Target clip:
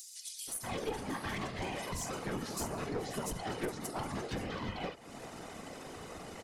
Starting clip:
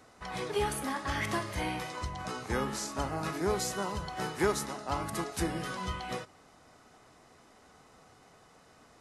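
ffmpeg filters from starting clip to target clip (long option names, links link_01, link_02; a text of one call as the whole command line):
ffmpeg -i in.wav -filter_complex "[0:a]equalizer=frequency=1200:width_type=o:width=1.2:gain=-4.5,acrossover=split=5000[link_01][link_02];[link_01]adelay=660[link_03];[link_03][link_02]amix=inputs=2:normalize=0,acompressor=mode=upward:threshold=-41dB:ratio=2.5,atempo=1.4,aecho=1:1:4.4:0.44,afftfilt=real='hypot(re,im)*cos(2*PI*random(0))':imag='hypot(re,im)*sin(2*PI*random(1))':win_size=512:overlap=0.75,acompressor=threshold=-46dB:ratio=3,aeval=exprs='clip(val(0),-1,0.00562)':channel_layout=same,volume=10.5dB" out.wav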